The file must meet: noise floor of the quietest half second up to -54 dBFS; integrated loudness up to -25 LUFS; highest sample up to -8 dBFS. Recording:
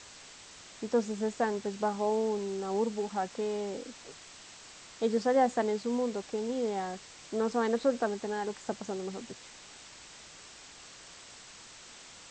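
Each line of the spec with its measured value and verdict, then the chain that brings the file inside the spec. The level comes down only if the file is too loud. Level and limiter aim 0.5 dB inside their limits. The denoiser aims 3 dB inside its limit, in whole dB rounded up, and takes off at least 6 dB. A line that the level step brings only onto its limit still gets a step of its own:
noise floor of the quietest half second -51 dBFS: fail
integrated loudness -32.0 LUFS: OK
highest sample -16.0 dBFS: OK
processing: denoiser 6 dB, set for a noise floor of -51 dBFS

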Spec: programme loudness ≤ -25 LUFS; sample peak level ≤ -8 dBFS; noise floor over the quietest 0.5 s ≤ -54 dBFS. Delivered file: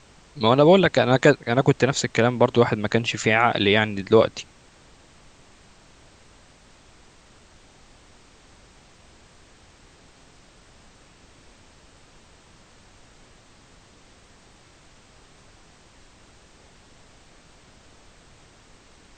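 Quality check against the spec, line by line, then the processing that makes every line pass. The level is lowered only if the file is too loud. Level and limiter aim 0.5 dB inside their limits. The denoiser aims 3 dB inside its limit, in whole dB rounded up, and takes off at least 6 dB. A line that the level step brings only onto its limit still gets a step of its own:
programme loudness -19.5 LUFS: fail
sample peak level -3.0 dBFS: fail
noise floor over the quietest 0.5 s -53 dBFS: fail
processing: gain -6 dB

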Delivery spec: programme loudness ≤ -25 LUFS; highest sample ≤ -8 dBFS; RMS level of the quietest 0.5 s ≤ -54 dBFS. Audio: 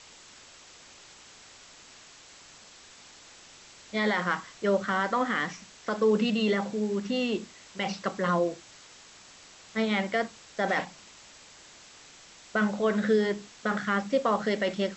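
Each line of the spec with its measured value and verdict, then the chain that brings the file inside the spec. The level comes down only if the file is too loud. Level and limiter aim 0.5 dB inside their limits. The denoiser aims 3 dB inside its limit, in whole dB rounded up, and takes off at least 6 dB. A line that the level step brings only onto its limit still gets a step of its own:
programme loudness -28.5 LUFS: OK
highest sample -13.5 dBFS: OK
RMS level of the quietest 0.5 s -52 dBFS: fail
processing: denoiser 6 dB, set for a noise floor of -52 dBFS

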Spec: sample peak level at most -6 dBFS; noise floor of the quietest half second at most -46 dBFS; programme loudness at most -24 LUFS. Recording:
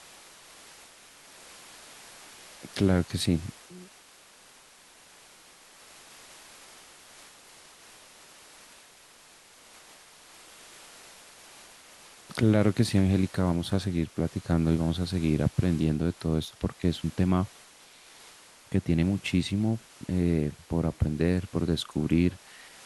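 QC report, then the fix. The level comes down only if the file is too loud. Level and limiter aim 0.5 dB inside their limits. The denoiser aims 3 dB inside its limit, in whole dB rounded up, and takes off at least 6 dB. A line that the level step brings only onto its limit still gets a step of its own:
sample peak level -9.0 dBFS: OK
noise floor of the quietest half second -55 dBFS: OK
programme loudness -27.5 LUFS: OK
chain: none

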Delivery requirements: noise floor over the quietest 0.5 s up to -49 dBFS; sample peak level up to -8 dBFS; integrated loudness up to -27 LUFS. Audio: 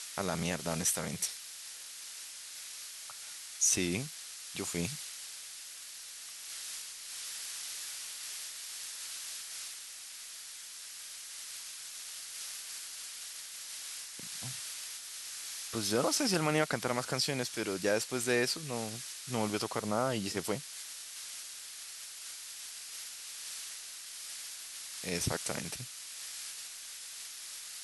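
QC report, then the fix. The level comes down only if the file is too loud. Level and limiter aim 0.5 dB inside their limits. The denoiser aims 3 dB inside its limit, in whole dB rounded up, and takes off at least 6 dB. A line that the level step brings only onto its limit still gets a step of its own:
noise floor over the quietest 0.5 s -47 dBFS: fail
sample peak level -14.5 dBFS: OK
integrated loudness -36.5 LUFS: OK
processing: denoiser 6 dB, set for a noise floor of -47 dBFS

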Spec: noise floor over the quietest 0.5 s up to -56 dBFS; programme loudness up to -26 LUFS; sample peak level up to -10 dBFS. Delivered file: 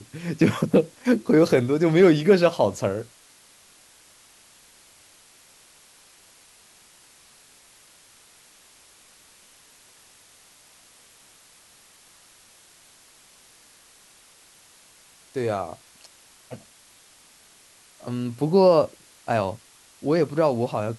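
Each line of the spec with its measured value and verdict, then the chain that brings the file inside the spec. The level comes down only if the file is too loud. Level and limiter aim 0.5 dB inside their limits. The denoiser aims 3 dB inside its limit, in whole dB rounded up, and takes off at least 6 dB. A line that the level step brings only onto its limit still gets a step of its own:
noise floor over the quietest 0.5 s -54 dBFS: fail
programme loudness -21.5 LUFS: fail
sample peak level -5.5 dBFS: fail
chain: gain -5 dB

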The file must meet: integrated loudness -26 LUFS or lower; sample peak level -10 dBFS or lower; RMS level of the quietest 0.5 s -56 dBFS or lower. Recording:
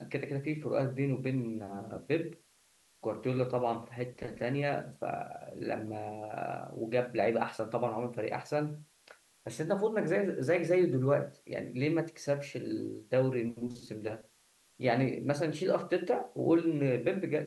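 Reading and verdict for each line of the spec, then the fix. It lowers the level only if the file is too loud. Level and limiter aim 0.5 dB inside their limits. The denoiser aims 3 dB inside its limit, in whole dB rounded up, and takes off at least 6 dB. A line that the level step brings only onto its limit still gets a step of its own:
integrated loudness -33.0 LUFS: OK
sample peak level -15.5 dBFS: OK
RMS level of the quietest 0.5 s -67 dBFS: OK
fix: none

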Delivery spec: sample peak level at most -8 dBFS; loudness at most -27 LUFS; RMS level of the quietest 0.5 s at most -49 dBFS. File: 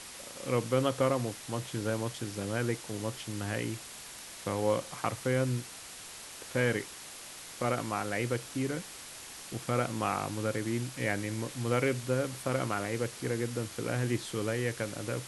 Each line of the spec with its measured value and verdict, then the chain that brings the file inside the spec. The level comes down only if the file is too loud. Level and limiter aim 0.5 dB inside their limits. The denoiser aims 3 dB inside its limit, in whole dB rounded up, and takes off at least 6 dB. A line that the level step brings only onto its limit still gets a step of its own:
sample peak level -13.5 dBFS: OK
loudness -33.5 LUFS: OK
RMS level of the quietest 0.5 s -46 dBFS: fail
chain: denoiser 6 dB, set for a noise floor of -46 dBFS

